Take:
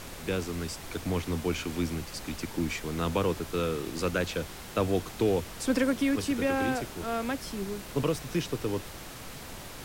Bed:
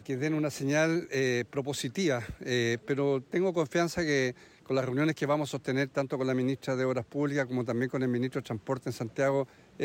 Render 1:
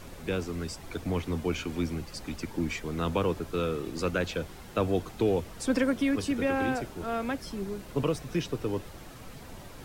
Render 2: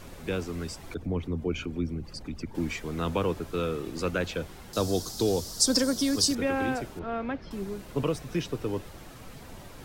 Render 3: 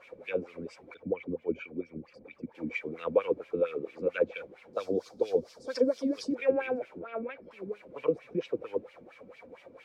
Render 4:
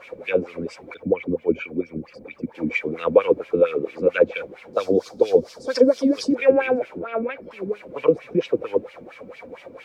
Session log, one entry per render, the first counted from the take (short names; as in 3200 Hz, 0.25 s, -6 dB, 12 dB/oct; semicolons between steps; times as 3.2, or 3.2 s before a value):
denoiser 8 dB, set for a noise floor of -43 dBFS
0.94–2.55 formant sharpening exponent 1.5; 4.73–6.35 resonant high shelf 3500 Hz +12.5 dB, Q 3; 6.99–7.51 air absorption 260 m
wah 4.4 Hz 220–2700 Hz, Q 3; small resonant body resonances 510/2300 Hz, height 14 dB, ringing for 30 ms
gain +11 dB; limiter -3 dBFS, peak gain reduction 1 dB